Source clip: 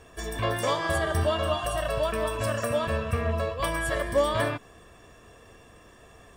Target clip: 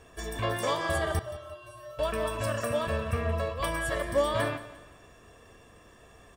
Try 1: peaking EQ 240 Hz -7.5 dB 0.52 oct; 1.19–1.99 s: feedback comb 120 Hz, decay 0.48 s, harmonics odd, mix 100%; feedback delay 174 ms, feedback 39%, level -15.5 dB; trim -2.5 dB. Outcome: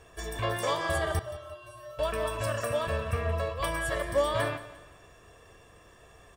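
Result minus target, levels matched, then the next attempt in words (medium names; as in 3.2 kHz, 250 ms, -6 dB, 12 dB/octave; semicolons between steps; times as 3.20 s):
250 Hz band -3.0 dB
1.19–1.99 s: feedback comb 120 Hz, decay 0.48 s, harmonics odd, mix 100%; feedback delay 174 ms, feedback 39%, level -15.5 dB; trim -2.5 dB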